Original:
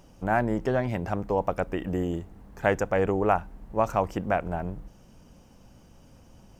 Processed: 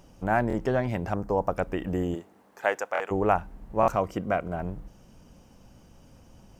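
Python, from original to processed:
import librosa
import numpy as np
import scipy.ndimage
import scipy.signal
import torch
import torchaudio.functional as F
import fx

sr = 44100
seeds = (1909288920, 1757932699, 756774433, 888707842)

y = fx.band_shelf(x, sr, hz=2800.0, db=-8.0, octaves=1.2, at=(1.14, 1.55))
y = fx.highpass(y, sr, hz=fx.line((2.14, 250.0), (3.1, 920.0)), slope=12, at=(2.14, 3.1), fade=0.02)
y = fx.notch_comb(y, sr, f0_hz=860.0, at=(3.96, 4.59))
y = fx.buffer_glitch(y, sr, at_s=(0.48, 2.93, 3.81), block=1024, repeats=2)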